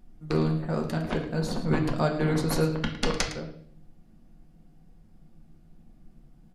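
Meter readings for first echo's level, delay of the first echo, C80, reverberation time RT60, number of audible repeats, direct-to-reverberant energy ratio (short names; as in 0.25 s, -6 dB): -13.0 dB, 0.109 s, 10.0 dB, 0.55 s, 1, 1.5 dB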